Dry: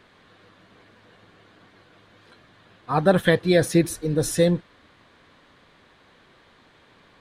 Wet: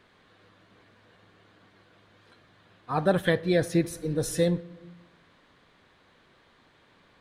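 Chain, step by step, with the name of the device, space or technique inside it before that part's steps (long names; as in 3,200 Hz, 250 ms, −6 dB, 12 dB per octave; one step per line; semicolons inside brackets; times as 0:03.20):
compressed reverb return (on a send at −12.5 dB: convolution reverb RT60 0.95 s, pre-delay 26 ms + downward compressor, threshold −20 dBFS, peak gain reduction 10.5 dB)
0:03.32–0:03.93: on the sum: high-shelf EQ 4,800 Hz −5 dB
level −5.5 dB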